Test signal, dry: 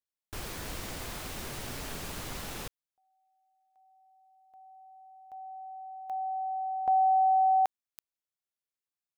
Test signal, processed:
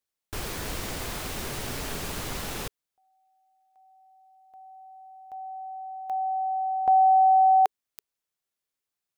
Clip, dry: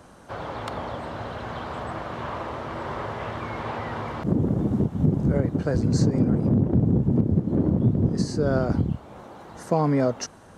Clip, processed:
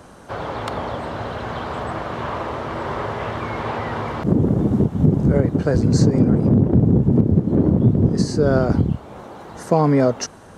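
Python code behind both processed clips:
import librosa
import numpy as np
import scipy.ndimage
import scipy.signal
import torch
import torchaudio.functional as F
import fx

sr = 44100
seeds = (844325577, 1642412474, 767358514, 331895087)

y = fx.peak_eq(x, sr, hz=420.0, db=2.5, octaves=0.27)
y = F.gain(torch.from_numpy(y), 5.5).numpy()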